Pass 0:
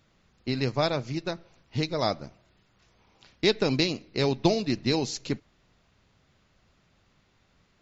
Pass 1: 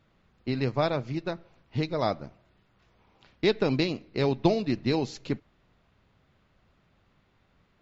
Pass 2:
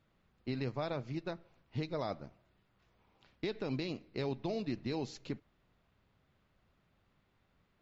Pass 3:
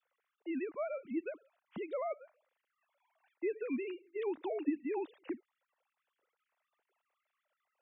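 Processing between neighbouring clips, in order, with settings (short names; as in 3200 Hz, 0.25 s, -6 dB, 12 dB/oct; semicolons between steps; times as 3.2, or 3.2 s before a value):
EQ curve 1200 Hz 0 dB, 3500 Hz -4 dB, 5900 Hz -11 dB
limiter -19.5 dBFS, peak gain reduction 10 dB; gain -7.5 dB
sine-wave speech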